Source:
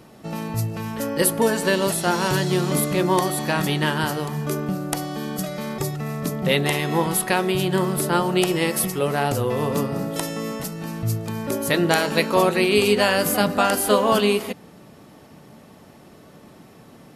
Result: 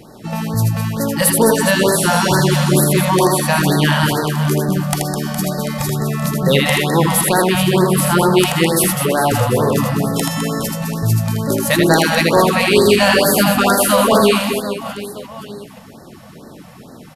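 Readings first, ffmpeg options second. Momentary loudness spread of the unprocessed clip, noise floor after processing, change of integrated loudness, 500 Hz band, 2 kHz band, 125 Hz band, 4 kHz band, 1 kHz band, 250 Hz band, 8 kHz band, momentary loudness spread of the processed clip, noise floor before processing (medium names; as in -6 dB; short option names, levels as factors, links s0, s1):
10 LU, -39 dBFS, +7.0 dB, +6.0 dB, +6.5 dB, +9.0 dB, +7.0 dB, +6.5 dB, +7.5 dB, +8.0 dB, 9 LU, -48 dBFS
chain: -af "aecho=1:1:80|208|412.8|740.5|1265:0.631|0.398|0.251|0.158|0.1,acontrast=71,afftfilt=real='re*(1-between(b*sr/1024,320*pow(2800/320,0.5+0.5*sin(2*PI*2.2*pts/sr))/1.41,320*pow(2800/320,0.5+0.5*sin(2*PI*2.2*pts/sr))*1.41))':imag='im*(1-between(b*sr/1024,320*pow(2800/320,0.5+0.5*sin(2*PI*2.2*pts/sr))/1.41,320*pow(2800/320,0.5+0.5*sin(2*PI*2.2*pts/sr))*1.41))':win_size=1024:overlap=0.75"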